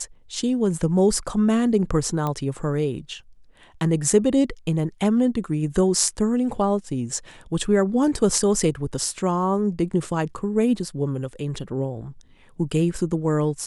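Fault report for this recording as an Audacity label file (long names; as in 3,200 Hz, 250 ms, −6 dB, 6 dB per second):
2.270000	2.270000	click −14 dBFS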